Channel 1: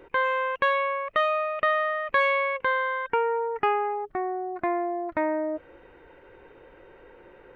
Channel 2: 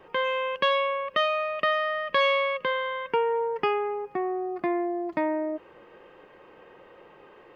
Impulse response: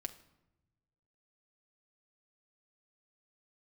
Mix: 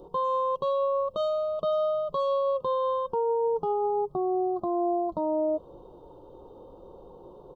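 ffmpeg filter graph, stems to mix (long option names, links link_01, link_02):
-filter_complex "[0:a]volume=2.5dB[link_01];[1:a]bass=frequency=250:gain=13,treble=frequency=4000:gain=-9,asplit=2[link_02][link_03];[link_03]adelay=2.3,afreqshift=-0.55[link_04];[link_02][link_04]amix=inputs=2:normalize=1,volume=-2dB[link_05];[link_01][link_05]amix=inputs=2:normalize=0,asuperstop=centerf=2000:order=8:qfactor=0.78,alimiter=limit=-20.5dB:level=0:latency=1:release=45"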